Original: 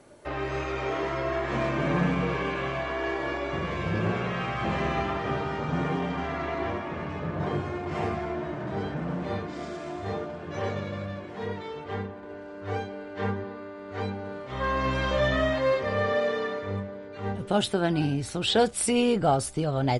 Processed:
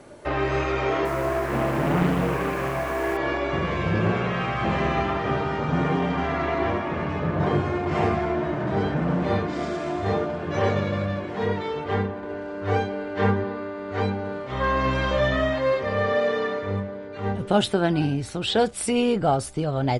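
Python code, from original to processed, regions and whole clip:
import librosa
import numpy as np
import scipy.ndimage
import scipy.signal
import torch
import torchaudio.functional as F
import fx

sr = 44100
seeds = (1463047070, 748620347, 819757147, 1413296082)

y = fx.chain(x, sr, fx.gaussian_blur(sigma=2.9),
    fx.quant_dither(seeds[0], bits=8, dither='triangular'),
    fx.doppler_dist(depth_ms=0.77), at=(1.05, 3.17))
y = fx.high_shelf(y, sr, hz=4800.0, db=-4.5)
y = fx.rider(y, sr, range_db=4, speed_s=2.0)
y = F.gain(torch.from_numpy(y), 4.5).numpy()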